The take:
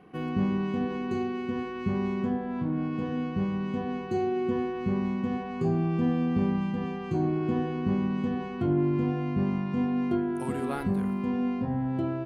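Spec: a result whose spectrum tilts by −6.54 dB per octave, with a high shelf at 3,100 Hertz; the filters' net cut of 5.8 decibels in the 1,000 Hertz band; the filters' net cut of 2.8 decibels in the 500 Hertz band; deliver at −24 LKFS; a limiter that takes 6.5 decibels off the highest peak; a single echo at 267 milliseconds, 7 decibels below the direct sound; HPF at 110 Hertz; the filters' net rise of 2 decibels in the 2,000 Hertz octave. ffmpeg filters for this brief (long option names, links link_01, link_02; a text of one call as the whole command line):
ffmpeg -i in.wav -af "highpass=110,equalizer=frequency=500:width_type=o:gain=-3,equalizer=frequency=1000:width_type=o:gain=-8,equalizer=frequency=2000:width_type=o:gain=8,highshelf=frequency=3100:gain=-7.5,alimiter=limit=-23.5dB:level=0:latency=1,aecho=1:1:267:0.447,volume=7dB" out.wav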